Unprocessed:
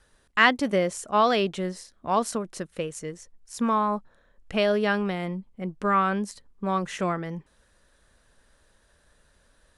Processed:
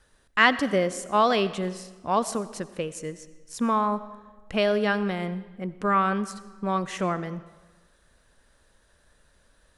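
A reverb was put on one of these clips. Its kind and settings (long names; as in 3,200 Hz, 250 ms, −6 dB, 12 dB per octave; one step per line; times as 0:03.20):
comb and all-pass reverb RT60 1.3 s, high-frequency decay 0.85×, pre-delay 45 ms, DRR 15 dB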